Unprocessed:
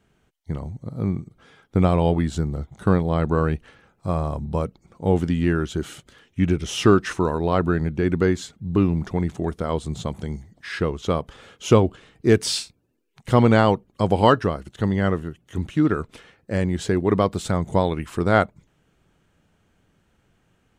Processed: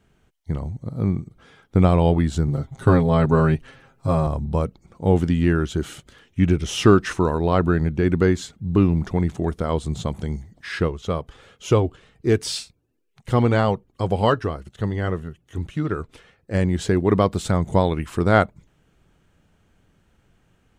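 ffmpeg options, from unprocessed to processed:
-filter_complex "[0:a]asettb=1/sr,asplit=3[a][b][c];[a]atrim=end=2.474[d];[b]atrim=start=2.47:end=4.27,asetpts=PTS-STARTPTS,afade=t=in:d=0.004:c=qsin,afade=t=out:st=1.796:d=0.004:c=qsin,aecho=1:1:7.5:0.93,atrim=end_sample=79380[e];[c]atrim=start=4.266[f];[d][e]acrossfade=d=0.004:c1=hsin:c2=qsin[g];[g][f]acrossfade=d=0.004:c1=qsin:c2=hsin,asplit=3[h][i][j];[h]afade=t=out:st=10.87:d=0.02[k];[i]flanger=delay=1.5:depth=1.2:regen=-63:speed=1.9:shape=sinusoidal,afade=t=in:st=10.87:d=0.02,afade=t=out:st=16.53:d=0.02[l];[j]afade=t=in:st=16.53:d=0.02[m];[k][l][m]amix=inputs=3:normalize=0,lowshelf=f=75:g=6.5,volume=1dB"

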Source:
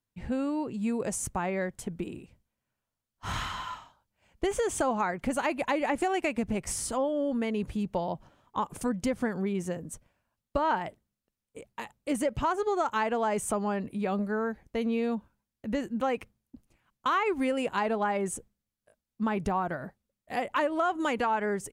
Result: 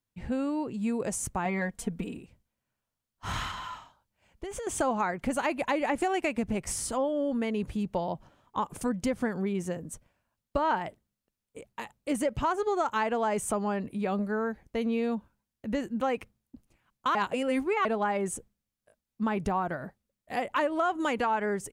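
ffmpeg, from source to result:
-filter_complex "[0:a]asettb=1/sr,asplit=3[a][b][c];[a]atrim=end=1.454[d];[b]atrim=start=1.45:end=2.17,asetpts=PTS-STARTPTS,afade=t=in:d=0.004:c=qsin,afade=t=out:st=0.716:d=0.004:c=qsin,aecho=1:1:4.3:0.78,atrim=end_sample=31752[e];[c]atrim=start=2.166[f];[d][e]acrossfade=d=0.004:c1=hsin:c2=qsin[g];[g][f]acrossfade=d=0.004:c1=qsin:c2=hsin,asettb=1/sr,asplit=3[h][i][j];[h]atrim=end=3.514[k];[i]atrim=start=3.51:end=4.67,asetpts=PTS-STARTPTS,afade=t=in:d=0.004:c=qsin,afade=t=out:st=1.156:d=0.004:c=qsin,acompressor=threshold=-34dB:ratio=6:attack=3.2:release=140:knee=1:detection=peak[l];[j]atrim=start=4.666[m];[k][l]acrossfade=d=0.004:c1=hsin:c2=qsin[n];[n][m]acrossfade=d=0.004:c1=qsin:c2=hsin,asplit=3[o][p][q];[o]atrim=end=17.152[r];[p]atrim=start=17.148:end=17.852,asetpts=PTS-STARTPTS,areverse[s];[q]atrim=start=17.848[t];[r][s]acrossfade=d=0.004:c1=hsin:c2=hsin[u];[u][t]acrossfade=d=0.004:c1=hsin:c2=hsin"

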